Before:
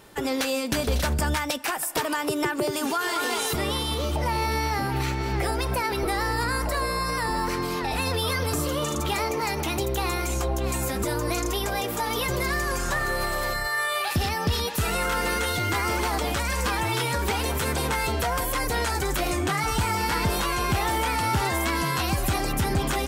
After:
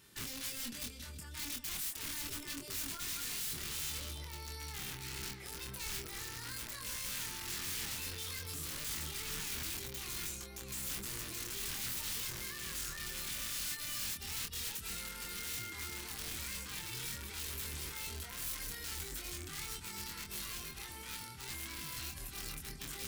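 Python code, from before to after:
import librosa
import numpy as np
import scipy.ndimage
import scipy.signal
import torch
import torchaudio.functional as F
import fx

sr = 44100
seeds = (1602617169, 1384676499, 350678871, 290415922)

p1 = fx.over_compress(x, sr, threshold_db=-28.0, ratio=-0.5)
p2 = fx.low_shelf(p1, sr, hz=120.0, db=-12.0)
p3 = p2 + fx.echo_single(p2, sr, ms=314, db=-14.0, dry=0)
p4 = (np.mod(10.0 ** (24.0 / 20.0) * p3 + 1.0, 2.0) - 1.0) / 10.0 ** (24.0 / 20.0)
p5 = fx.tone_stack(p4, sr, knobs='6-0-2')
p6 = fx.doubler(p5, sr, ms=25.0, db=-4)
y = p6 * 10.0 ** (4.5 / 20.0)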